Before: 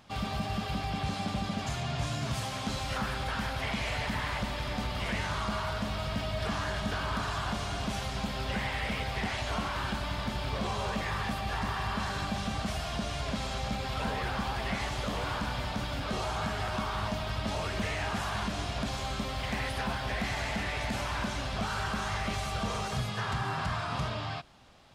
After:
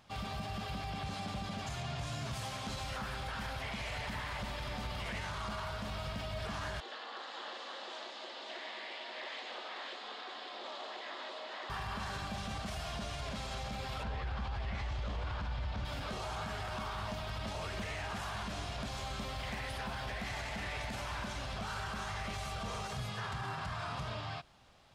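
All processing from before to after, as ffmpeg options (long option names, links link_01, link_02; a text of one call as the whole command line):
ffmpeg -i in.wav -filter_complex "[0:a]asettb=1/sr,asplit=3[link_01][link_02][link_03];[link_01]atrim=end=6.804[link_04];[link_02]atrim=start=6.8:end=11.7,asetpts=PTS-STARTPTS,afade=type=in:duration=0.004:curve=qsin,afade=type=out:start_time=4.896:duration=0.004:curve=qsin,aeval=exprs='val(0)*sin(2*PI*160*n/s)':channel_layout=same,highpass=frequency=400:width=0.5412,highpass=frequency=400:width=1.3066,equalizer=frequency=410:width_type=q:width=4:gain=-8,equalizer=frequency=930:width_type=q:width=4:gain=-5,equalizer=frequency=1400:width_type=q:width=4:gain=-6,equalizer=frequency=2400:width_type=q:width=4:gain=-5,equalizer=frequency=3700:width_type=q:width=4:gain=3,equalizer=frequency=5800:width_type=q:width=4:gain=-8,lowpass=frequency=6200:width=0.5412,lowpass=frequency=6200:width=1.3066,aecho=1:1:533:0.668,atrim=end_sample=216090[link_05];[link_03]atrim=start=11.696[link_06];[link_04][link_05]acrossfade=duration=0.004:curve1=hsin:curve2=qsin[link_07];[link_07][link_06]acrossfade=duration=0.004:curve1=qsin:curve2=hsin,asettb=1/sr,asplit=3[link_08][link_09][link_10];[link_08]atrim=end=14.034[link_11];[link_09]atrim=start=14.03:end=15.85,asetpts=PTS-STARTPTS,afade=type=in:duration=0.004:curve=qsin,afade=type=out:start_time=1.816:duration=0.004:curve=qsin,lowpass=4800,equalizer=frequency=67:width_type=o:width=1.2:gain=14[link_12];[link_10]atrim=start=15.846[link_13];[link_11][link_12]acrossfade=duration=0.004:curve1=hsin:curve2=qsin[link_14];[link_14][link_13]acrossfade=duration=0.004:curve1=qsin:curve2=hsin,equalizer=frequency=260:width=1.4:gain=-3.5,alimiter=level_in=2.5dB:limit=-24dB:level=0:latency=1:release=29,volume=-2.5dB,volume=-4.5dB" out.wav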